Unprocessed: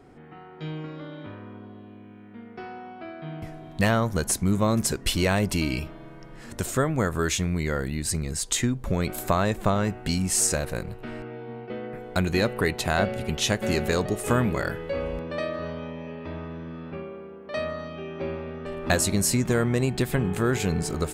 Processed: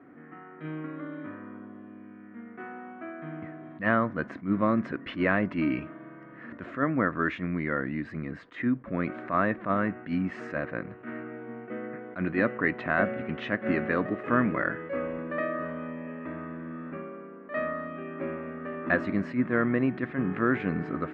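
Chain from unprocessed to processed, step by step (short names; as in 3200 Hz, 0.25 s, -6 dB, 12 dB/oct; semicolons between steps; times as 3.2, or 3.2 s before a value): speaker cabinet 200–2100 Hz, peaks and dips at 280 Hz +7 dB, 420 Hz -7 dB, 840 Hz -9 dB, 1200 Hz +4 dB, 1800 Hz +5 dB; attack slew limiter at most 220 dB/s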